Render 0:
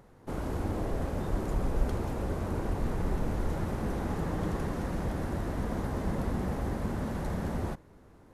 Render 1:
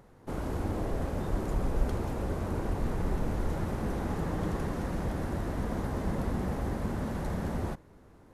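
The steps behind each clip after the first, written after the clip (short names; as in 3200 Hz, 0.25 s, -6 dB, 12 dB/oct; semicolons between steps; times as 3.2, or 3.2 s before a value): nothing audible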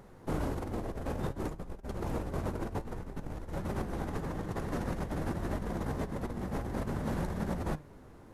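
negative-ratio compressor -34 dBFS, ratio -0.5; flange 0.54 Hz, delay 4.8 ms, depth 4.4 ms, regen +82%; gain +4 dB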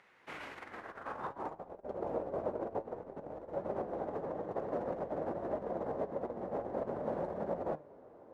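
band-pass sweep 2300 Hz -> 580 Hz, 0.5–1.84; gain +6.5 dB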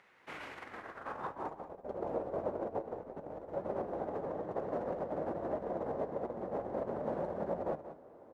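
echo 0.183 s -12 dB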